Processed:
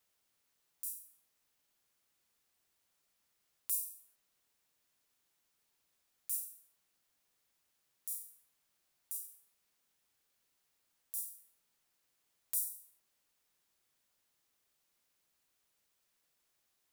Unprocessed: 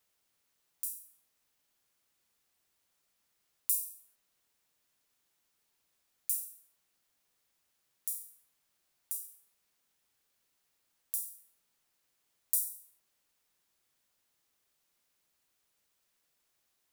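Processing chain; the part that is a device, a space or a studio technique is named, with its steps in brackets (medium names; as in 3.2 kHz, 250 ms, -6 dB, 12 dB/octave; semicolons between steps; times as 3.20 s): clipper into limiter (hard clipper -9.5 dBFS, distortion -21 dB; peak limiter -17.5 dBFS, peak gain reduction 8 dB); trim -1.5 dB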